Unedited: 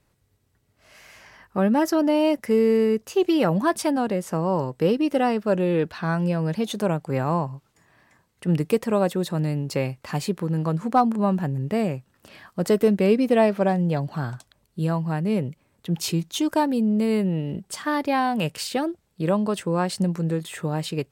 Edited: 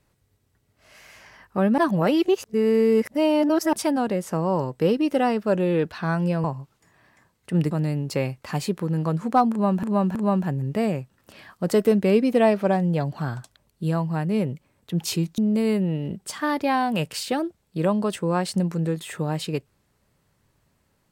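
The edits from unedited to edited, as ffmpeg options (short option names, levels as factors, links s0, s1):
-filter_complex "[0:a]asplit=8[s0][s1][s2][s3][s4][s5][s6][s7];[s0]atrim=end=1.782[s8];[s1]atrim=start=1.778:end=3.732,asetpts=PTS-STARTPTS,areverse[s9];[s2]atrim=start=3.728:end=6.442[s10];[s3]atrim=start=7.378:end=8.652[s11];[s4]atrim=start=9.308:end=11.432[s12];[s5]atrim=start=11.108:end=11.432[s13];[s6]atrim=start=11.108:end=16.342[s14];[s7]atrim=start=16.818[s15];[s8][s9]acrossfade=d=0.004:c1=hsin:c2=hsin[s16];[s16][s10]acrossfade=d=0.004:c1=hsin:c2=hsin[s17];[s17][s11]acrossfade=d=0.004:c1=hsin:c2=hsin[s18];[s18][s12]acrossfade=d=0.004:c1=hsin:c2=hsin[s19];[s19][s13]acrossfade=d=0.004:c1=hsin:c2=hsin[s20];[s20][s14]acrossfade=d=0.004:c1=hsin:c2=hsin[s21];[s21][s15]acrossfade=d=0.004:c1=hsin:c2=hsin"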